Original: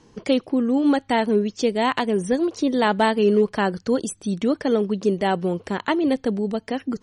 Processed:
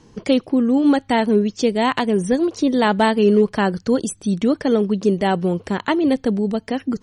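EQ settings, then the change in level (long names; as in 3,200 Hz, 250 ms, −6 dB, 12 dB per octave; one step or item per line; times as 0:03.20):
bass and treble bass +4 dB, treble +1 dB
+2.0 dB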